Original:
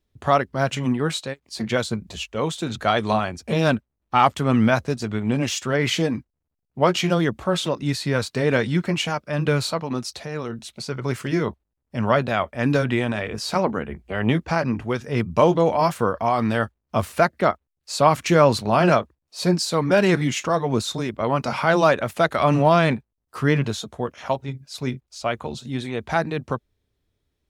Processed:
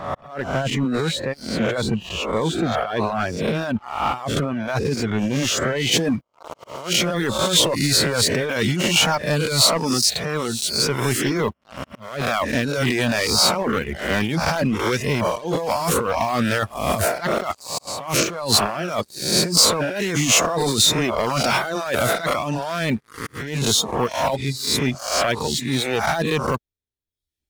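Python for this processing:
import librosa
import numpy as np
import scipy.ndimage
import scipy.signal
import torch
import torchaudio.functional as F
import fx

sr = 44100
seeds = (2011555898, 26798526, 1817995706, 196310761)

y = fx.spec_swells(x, sr, rise_s=0.74)
y = fx.over_compress(y, sr, threshold_db=-22.0, ratio=-1.0)
y = fx.leveller(y, sr, passes=3)
y = fx.auto_swell(y, sr, attack_ms=427.0)
y = fx.high_shelf(y, sr, hz=3400.0, db=fx.steps((0.0, -8.5), (3.4, -2.5), (5.91, 10.0)))
y = fx.dereverb_blind(y, sr, rt60_s=0.7)
y = y * librosa.db_to_amplitude(-8.5)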